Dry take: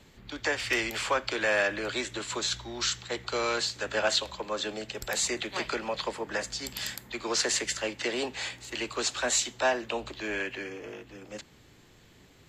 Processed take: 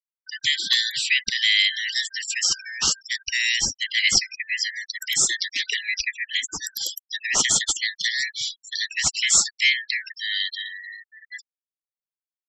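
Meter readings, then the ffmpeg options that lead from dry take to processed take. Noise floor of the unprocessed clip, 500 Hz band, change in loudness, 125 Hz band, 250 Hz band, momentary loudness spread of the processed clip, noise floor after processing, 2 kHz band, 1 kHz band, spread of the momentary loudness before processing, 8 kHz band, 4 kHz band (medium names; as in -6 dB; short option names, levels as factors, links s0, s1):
-57 dBFS, -17.5 dB, +8.5 dB, -1.0 dB, -8.5 dB, 12 LU, under -85 dBFS, +8.0 dB, -7.5 dB, 10 LU, +10.5 dB, +11.0 dB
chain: -af "afftfilt=real='real(if(lt(b,272),68*(eq(floor(b/68),0)*3+eq(floor(b/68),1)*0+eq(floor(b/68),2)*1+eq(floor(b/68),3)*2)+mod(b,68),b),0)':imag='imag(if(lt(b,272),68*(eq(floor(b/68),0)*3+eq(floor(b/68),1)*0+eq(floor(b/68),2)*1+eq(floor(b/68),3)*2)+mod(b,68),b),0)':win_size=2048:overlap=0.75,highshelf=f=2100:g=11,afftfilt=real='re*gte(hypot(re,im),0.0562)':imag='im*gte(hypot(re,im),0.0562)':win_size=1024:overlap=0.75"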